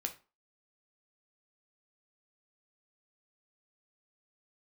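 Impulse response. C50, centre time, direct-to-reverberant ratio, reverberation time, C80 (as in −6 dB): 13.5 dB, 8 ms, 4.5 dB, 0.35 s, 19.5 dB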